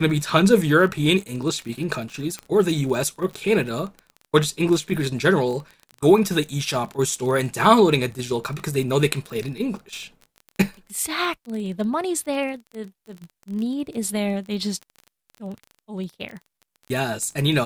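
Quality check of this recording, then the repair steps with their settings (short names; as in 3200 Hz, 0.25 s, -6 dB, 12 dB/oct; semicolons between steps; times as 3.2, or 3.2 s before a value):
crackle 24/s -30 dBFS
2.39 pop -17 dBFS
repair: de-click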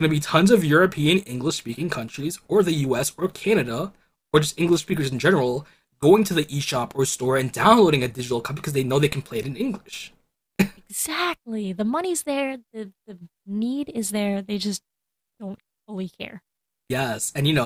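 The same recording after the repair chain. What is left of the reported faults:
none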